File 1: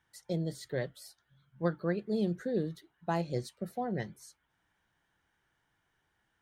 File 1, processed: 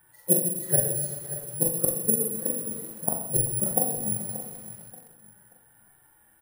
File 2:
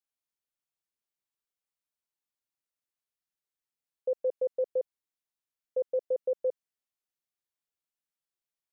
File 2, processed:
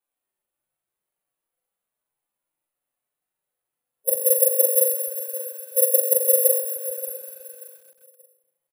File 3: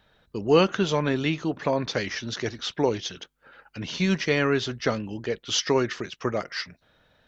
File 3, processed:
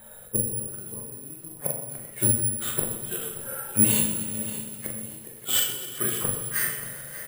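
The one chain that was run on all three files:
bin magnitudes rounded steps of 15 dB; bell 660 Hz +6.5 dB 1.8 oct; harmonic-percussive split percussive -18 dB; bell 5200 Hz -9 dB 1 oct; in parallel at +2.5 dB: negative-ratio compressor -29 dBFS, ratio -0.5; on the sum: flipped gate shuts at -18 dBFS, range -31 dB; doubler 42 ms -6.5 dB; feedback echo 0.581 s, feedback 28%, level -13.5 dB; shoebox room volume 270 m³, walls mixed, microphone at 0.96 m; careless resampling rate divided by 4×, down filtered, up zero stuff; lo-fi delay 0.129 s, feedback 80%, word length 7-bit, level -13.5 dB; normalise peaks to -2 dBFS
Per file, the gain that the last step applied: +2.0, 0.0, -1.0 dB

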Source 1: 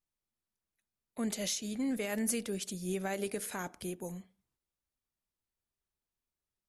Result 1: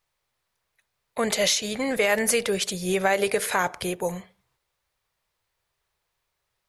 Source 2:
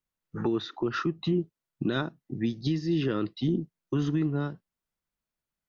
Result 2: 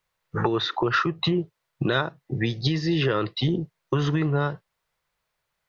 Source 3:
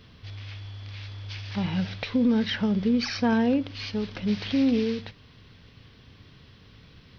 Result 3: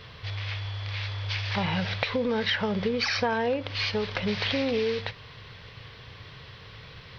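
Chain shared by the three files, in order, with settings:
graphic EQ 125/250/500/1000/2000/4000 Hz +6/-10/+8/+7/+7/+5 dB; compressor 4:1, threshold -26 dBFS; normalise peaks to -9 dBFS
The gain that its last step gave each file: +9.5, +6.5, +2.0 dB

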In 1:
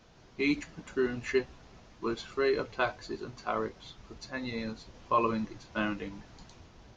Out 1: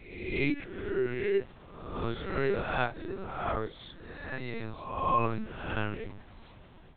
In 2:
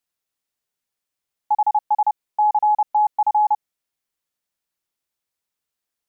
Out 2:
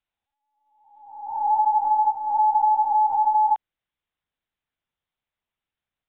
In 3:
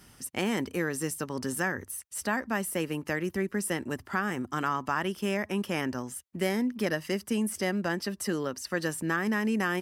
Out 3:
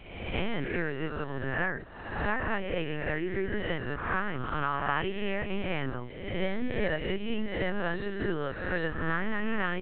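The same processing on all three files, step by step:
spectral swells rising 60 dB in 1.03 s; LPC vocoder at 8 kHz pitch kept; gain -2 dB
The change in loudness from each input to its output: 0.0, -0.5, -1.5 LU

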